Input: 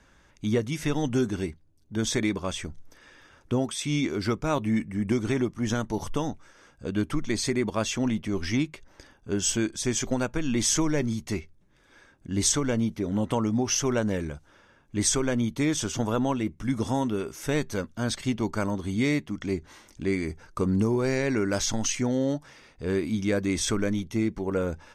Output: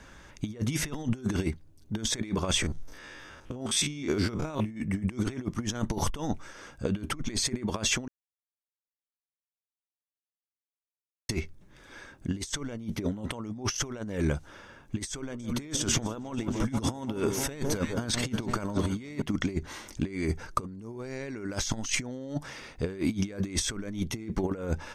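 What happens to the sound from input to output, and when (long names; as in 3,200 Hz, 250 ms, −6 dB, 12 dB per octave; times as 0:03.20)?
0:02.62–0:04.81: spectrum averaged block by block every 50 ms
0:08.08–0:11.29: silence
0:15.08–0:19.22: delay that swaps between a low-pass and a high-pass 157 ms, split 1,200 Hz, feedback 76%, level −14 dB
whole clip: compressor whose output falls as the input rises −32 dBFS, ratio −0.5; level +2 dB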